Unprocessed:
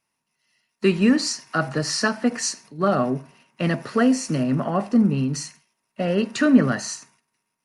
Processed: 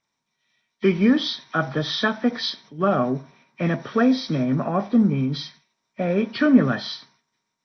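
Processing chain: knee-point frequency compression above 1.8 kHz 1.5:1

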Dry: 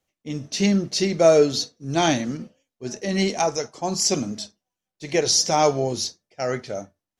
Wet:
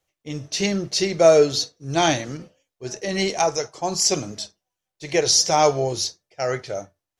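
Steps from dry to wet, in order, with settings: peaking EQ 230 Hz -13.5 dB 0.47 oct; trim +2 dB

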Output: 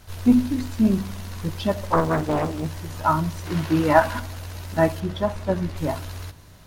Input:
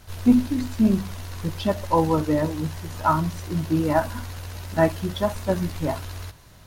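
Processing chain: 3.46–4.20 s: peaking EQ 1.6 kHz +8.5 dB 3 oct; 5.00–5.77 s: low-pass 3.2 kHz 6 dB/octave; filtered feedback delay 88 ms, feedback 79%, low-pass 840 Hz, level -22 dB; 1.86–2.66 s: loudspeaker Doppler distortion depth 0.95 ms

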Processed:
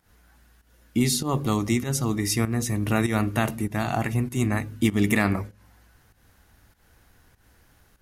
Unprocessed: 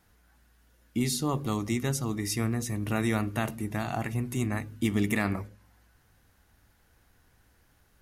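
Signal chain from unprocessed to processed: volume shaper 98 bpm, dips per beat 1, -13 dB, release 178 ms; trim +6 dB

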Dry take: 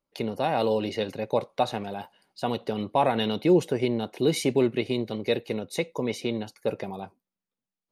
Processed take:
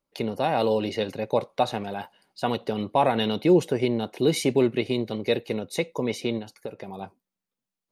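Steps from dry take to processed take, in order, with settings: 1.86–2.56 s: dynamic bell 1.7 kHz, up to +5 dB, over -45 dBFS, Q 1.2; 6.38–7.01 s: compression 12:1, threshold -33 dBFS, peak gain reduction 12.5 dB; trim +1.5 dB

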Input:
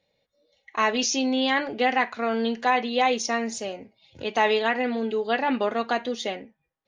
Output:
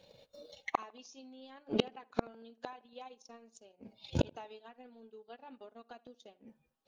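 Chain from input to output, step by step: coarse spectral quantiser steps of 15 dB; peaking EQ 2 kHz -12.5 dB 0.34 oct; transient shaper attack +7 dB, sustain -11 dB; inverted gate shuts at -26 dBFS, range -41 dB; on a send: tape echo 78 ms, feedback 45%, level -22 dB, low-pass 2.2 kHz; on the sum: trim +12.5 dB

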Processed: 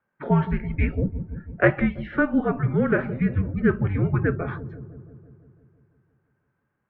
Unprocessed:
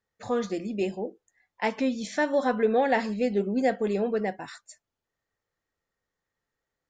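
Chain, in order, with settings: feedback echo behind a low-pass 167 ms, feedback 66%, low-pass 440 Hz, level -6.5 dB; mistuned SSB -310 Hz 420–2600 Hz; gain riding within 5 dB 0.5 s; trim +6.5 dB

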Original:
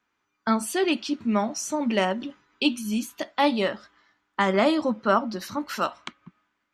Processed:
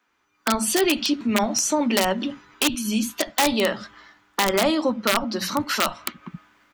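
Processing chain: dynamic bell 3.9 kHz, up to +3 dB, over -44 dBFS, Q 0.91; level rider gain up to 13.5 dB; in parallel at 0 dB: peak limiter -9 dBFS, peak gain reduction 8 dB; on the sum: compression 2:1, threshold -25 dBFS, peak gain reduction 11.5 dB; integer overflow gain 10.5 dB; bands offset in time highs, lows 70 ms, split 190 Hz

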